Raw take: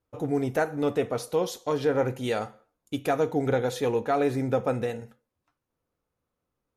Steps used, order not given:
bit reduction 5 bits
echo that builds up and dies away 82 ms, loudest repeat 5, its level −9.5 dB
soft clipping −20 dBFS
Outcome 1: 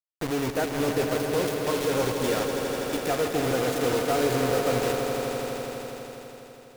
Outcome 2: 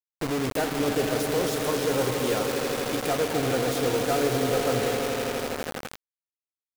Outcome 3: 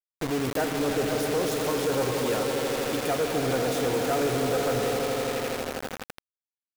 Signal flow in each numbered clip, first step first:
bit reduction, then soft clipping, then echo that builds up and dies away
soft clipping, then echo that builds up and dies away, then bit reduction
echo that builds up and dies away, then bit reduction, then soft clipping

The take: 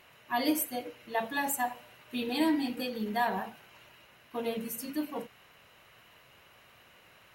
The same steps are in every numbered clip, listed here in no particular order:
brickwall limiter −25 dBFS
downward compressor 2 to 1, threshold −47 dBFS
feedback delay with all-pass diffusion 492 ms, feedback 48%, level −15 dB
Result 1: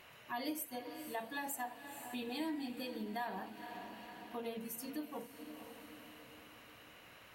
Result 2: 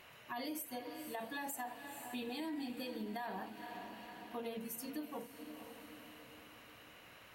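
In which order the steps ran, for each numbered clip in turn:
feedback delay with all-pass diffusion, then downward compressor, then brickwall limiter
feedback delay with all-pass diffusion, then brickwall limiter, then downward compressor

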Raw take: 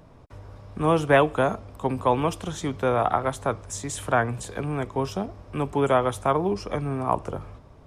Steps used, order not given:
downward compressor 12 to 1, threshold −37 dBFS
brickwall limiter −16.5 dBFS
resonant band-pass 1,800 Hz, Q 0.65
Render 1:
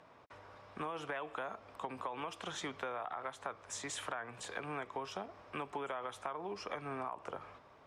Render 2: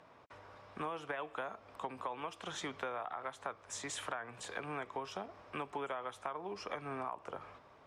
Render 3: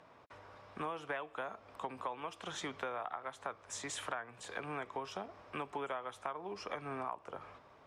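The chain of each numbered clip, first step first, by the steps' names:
brickwall limiter, then resonant band-pass, then downward compressor
resonant band-pass, then brickwall limiter, then downward compressor
resonant band-pass, then downward compressor, then brickwall limiter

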